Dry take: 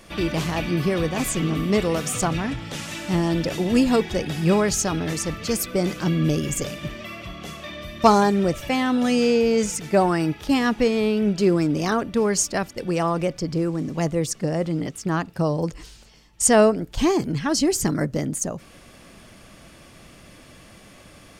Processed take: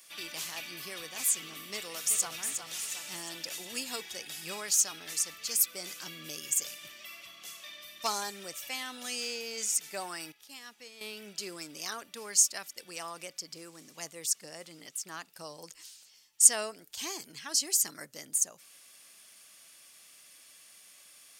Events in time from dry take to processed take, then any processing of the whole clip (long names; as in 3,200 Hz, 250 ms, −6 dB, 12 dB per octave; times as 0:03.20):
0:01.74–0:02.42: delay throw 360 ms, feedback 50%, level −7 dB
0:10.32–0:11.01: clip gain −11 dB
whole clip: first difference